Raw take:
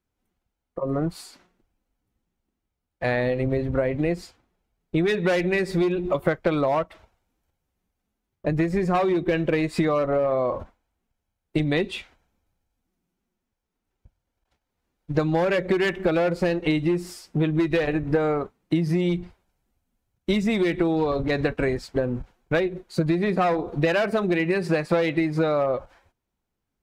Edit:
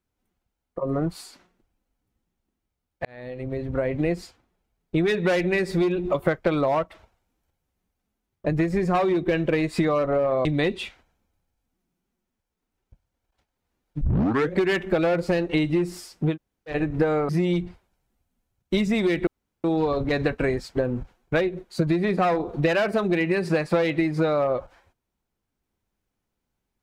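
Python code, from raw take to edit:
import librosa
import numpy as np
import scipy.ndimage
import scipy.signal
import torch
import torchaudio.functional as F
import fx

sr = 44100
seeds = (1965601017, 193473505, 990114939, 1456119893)

y = fx.edit(x, sr, fx.fade_in_span(start_s=3.05, length_s=0.95),
    fx.cut(start_s=10.45, length_s=1.13),
    fx.tape_start(start_s=15.14, length_s=0.52),
    fx.room_tone_fill(start_s=17.46, length_s=0.38, crossfade_s=0.1),
    fx.cut(start_s=18.42, length_s=0.43),
    fx.insert_room_tone(at_s=20.83, length_s=0.37), tone=tone)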